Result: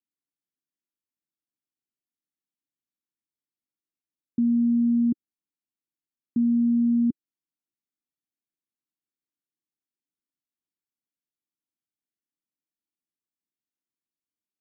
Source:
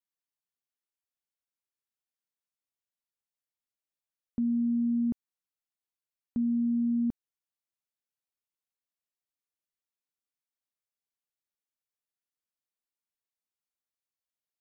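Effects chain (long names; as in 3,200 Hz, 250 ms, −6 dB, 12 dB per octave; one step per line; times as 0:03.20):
high-pass filter 110 Hz
low shelf with overshoot 420 Hz +10 dB, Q 3
level −8 dB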